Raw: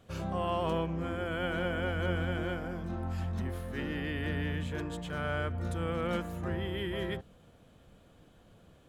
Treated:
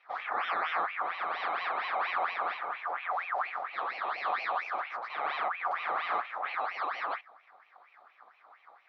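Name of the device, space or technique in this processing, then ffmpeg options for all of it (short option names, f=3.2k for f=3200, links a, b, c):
voice changer toy: -filter_complex "[0:a]aeval=exprs='val(0)*sin(2*PI*1600*n/s+1600*0.6/4.3*sin(2*PI*4.3*n/s))':c=same,highpass=510,equalizer=f=740:t=q:w=4:g=9,equalizer=f=1.2k:t=q:w=4:g=10,equalizer=f=2.8k:t=q:w=4:g=-9,lowpass=f=3.7k:w=0.5412,lowpass=f=3.7k:w=1.3066,asettb=1/sr,asplit=3[a][b][c];[a]atrim=end=4.184[d];[b]atrim=start=4.18:end=4.74,asetpts=PTS-STARTPTS,afade=t=in:d=0.004:c=qsin,afade=t=out:st=0.556:d=0.004:c=qsin,highshelf=f=5.8k:g=10[e];[c]atrim=start=4.736[f];[d][e]acrossfade=d=0.004:c1=hsin:c2=qsin[g];[g][f]acrossfade=d=0.004:c1=qsin:c2=hsin"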